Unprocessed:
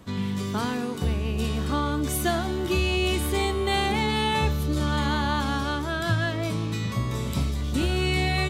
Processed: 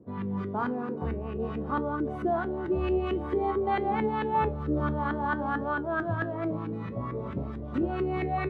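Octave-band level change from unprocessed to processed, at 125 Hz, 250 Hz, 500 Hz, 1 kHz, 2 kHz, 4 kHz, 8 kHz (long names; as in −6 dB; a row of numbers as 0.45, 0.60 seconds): −8.5 dB, −3.0 dB, −0.5 dB, −1.0 dB, −7.0 dB, −22.5 dB, below −35 dB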